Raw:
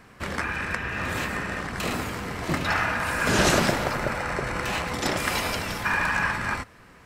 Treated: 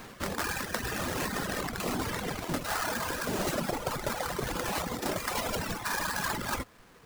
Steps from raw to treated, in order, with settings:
each half-wave held at its own peak
parametric band 77 Hz −7.5 dB 2.4 octaves
reverb reduction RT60 1.3 s
dynamic equaliser 2,400 Hz, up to −5 dB, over −35 dBFS, Q 0.74
reversed playback
downward compressor 6 to 1, threshold −33 dBFS, peak gain reduction 15.5 dB
reversed playback
level +3 dB

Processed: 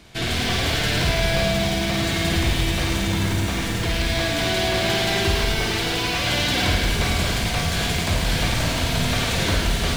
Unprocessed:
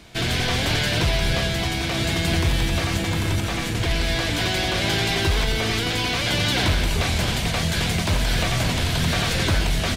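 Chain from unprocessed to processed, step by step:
flutter between parallel walls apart 8.8 metres, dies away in 0.55 s
feedback echo at a low word length 107 ms, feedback 80%, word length 6 bits, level −7 dB
level −2 dB

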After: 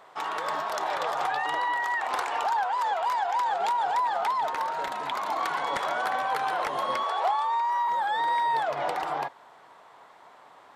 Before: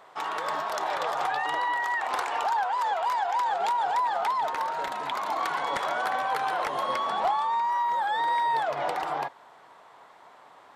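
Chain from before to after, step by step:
0:07.03–0:07.88: Butterworth high-pass 360 Hz 72 dB per octave

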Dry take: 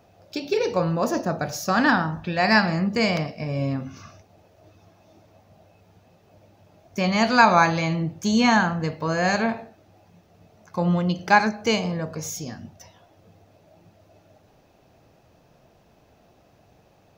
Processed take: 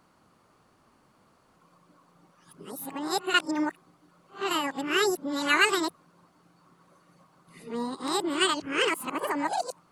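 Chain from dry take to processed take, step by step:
played backwards from end to start
wrong playback speed 45 rpm record played at 78 rpm
level −6 dB

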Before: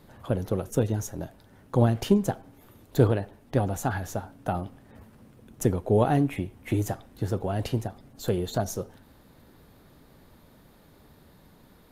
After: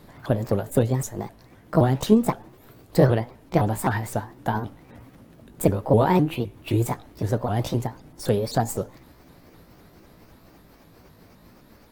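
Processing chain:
pitch shifter swept by a sawtooth +5 semitones, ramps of 258 ms
level +5 dB

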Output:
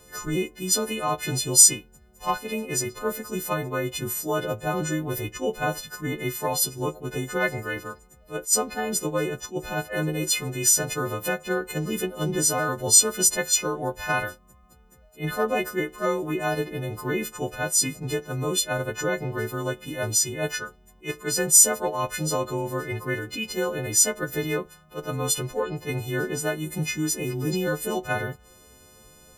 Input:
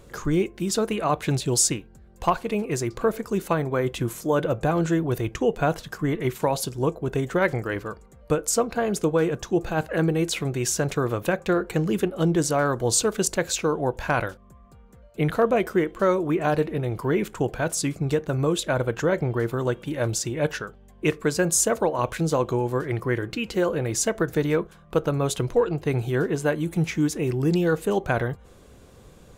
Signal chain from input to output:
every partial snapped to a pitch grid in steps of 3 semitones
level that may rise only so fast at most 300 dB per second
level −4 dB

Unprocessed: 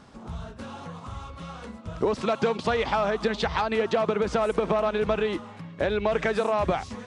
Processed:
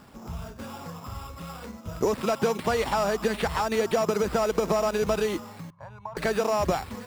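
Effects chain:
decimation without filtering 7×
0:05.70–0:06.17: pair of resonant band-passes 340 Hz, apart 3 octaves
slew-rate limiting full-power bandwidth 150 Hz

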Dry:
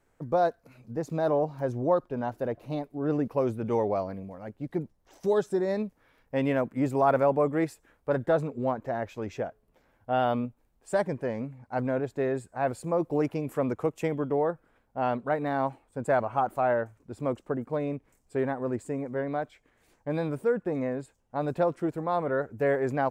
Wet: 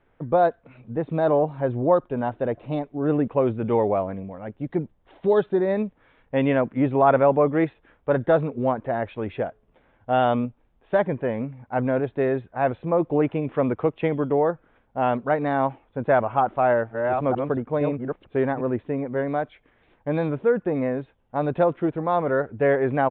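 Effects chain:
0:16.43–0:18.61: delay that plays each chunk backwards 460 ms, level −4 dB
downsampling to 8,000 Hz
level +5.5 dB

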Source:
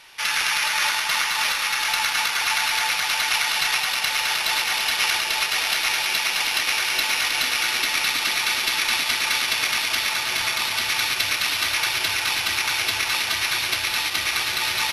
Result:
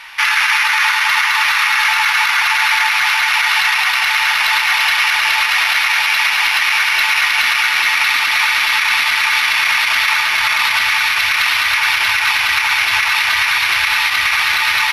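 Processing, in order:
octave-band graphic EQ 125/250/500/1,000/2,000/8,000 Hz −5/−5/−11/+8/+8/−5 dB
brickwall limiter −12.5 dBFS, peak gain reduction 10.5 dB
level +8 dB

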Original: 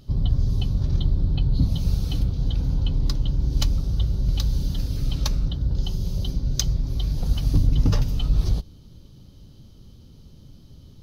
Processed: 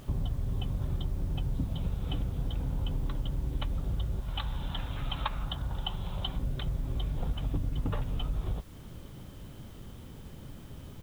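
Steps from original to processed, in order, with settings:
0:04.20–0:06.38: low shelf with overshoot 630 Hz −9.5 dB, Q 1.5
downward compressor 6 to 1, threshold −29 dBFS, peak gain reduction 15.5 dB
downsampling to 8,000 Hz
background noise white −63 dBFS
parametric band 940 Hz +9.5 dB 2.8 octaves

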